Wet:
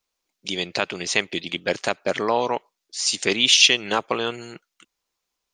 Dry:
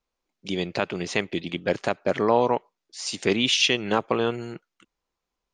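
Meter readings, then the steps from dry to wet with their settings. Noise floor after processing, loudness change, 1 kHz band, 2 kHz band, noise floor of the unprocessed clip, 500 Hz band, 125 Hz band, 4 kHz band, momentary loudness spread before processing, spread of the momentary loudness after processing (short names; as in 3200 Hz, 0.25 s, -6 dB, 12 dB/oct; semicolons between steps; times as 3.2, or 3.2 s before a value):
-81 dBFS, +3.5 dB, +0.5 dB, +4.5 dB, -84 dBFS, -1.5 dB, -5.0 dB, +6.5 dB, 14 LU, 16 LU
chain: high shelf 2500 Hz +11 dB; harmonic-percussive split percussive +3 dB; low shelf 240 Hz -5 dB; gain -2.5 dB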